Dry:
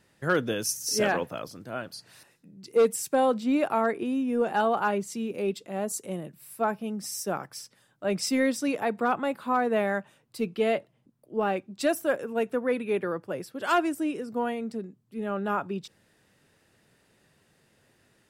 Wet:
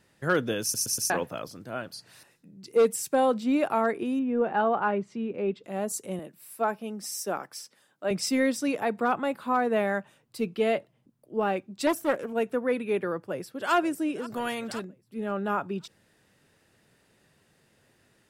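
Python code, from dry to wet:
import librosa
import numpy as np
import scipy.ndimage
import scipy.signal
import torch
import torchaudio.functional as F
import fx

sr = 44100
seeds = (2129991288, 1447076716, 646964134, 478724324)

y = fx.lowpass(x, sr, hz=2300.0, slope=12, at=(4.19, 5.64))
y = fx.highpass(y, sr, hz=240.0, slope=12, at=(6.19, 8.11))
y = fx.doppler_dist(y, sr, depth_ms=0.25, at=(11.87, 12.33))
y = fx.echo_throw(y, sr, start_s=13.25, length_s=0.48, ms=530, feedback_pct=45, wet_db=-16.0)
y = fx.spectral_comp(y, sr, ratio=2.0, at=(14.29, 14.83), fade=0.02)
y = fx.edit(y, sr, fx.stutter_over(start_s=0.62, slice_s=0.12, count=4), tone=tone)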